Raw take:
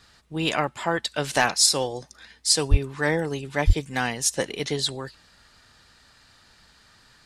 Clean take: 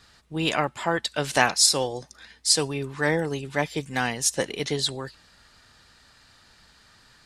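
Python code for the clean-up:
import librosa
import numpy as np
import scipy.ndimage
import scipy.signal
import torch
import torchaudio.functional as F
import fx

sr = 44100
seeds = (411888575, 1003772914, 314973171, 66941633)

y = fx.fix_declip(x, sr, threshold_db=-7.5)
y = fx.fix_deplosive(y, sr, at_s=(2.7, 3.66))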